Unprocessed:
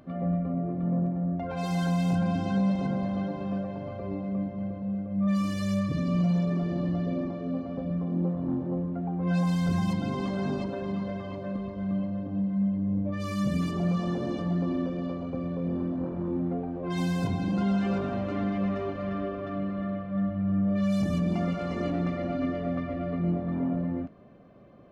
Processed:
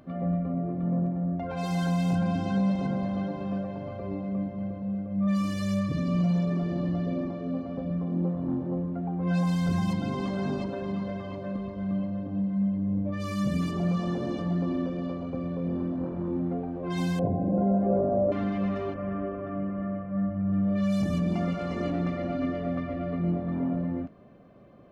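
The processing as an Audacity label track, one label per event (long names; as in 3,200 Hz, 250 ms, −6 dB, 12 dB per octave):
17.190000	18.320000	low-pass with resonance 590 Hz, resonance Q 4.1
18.940000	20.530000	moving average over 11 samples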